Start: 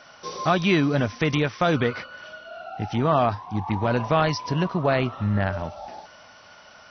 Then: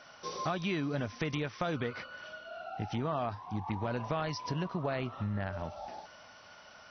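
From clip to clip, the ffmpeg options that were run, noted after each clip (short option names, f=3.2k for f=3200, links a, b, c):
-af "acompressor=threshold=-27dB:ratio=3,volume=-5.5dB"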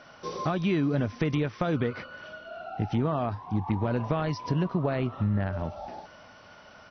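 -af "firequalizer=gain_entry='entry(320,0);entry(700,-5);entry(6000,-11)':delay=0.05:min_phase=1,volume=8.5dB"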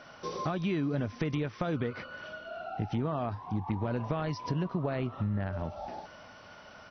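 -af "acompressor=threshold=-36dB:ratio=1.5"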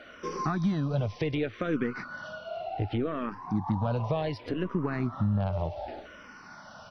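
-filter_complex "[0:a]aeval=exprs='0.119*(cos(1*acos(clip(val(0)/0.119,-1,1)))-cos(1*PI/2))+0.0075*(cos(4*acos(clip(val(0)/0.119,-1,1)))-cos(4*PI/2))':c=same,asplit=2[a][b];[b]afreqshift=-0.67[c];[a][c]amix=inputs=2:normalize=1,volume=5.5dB"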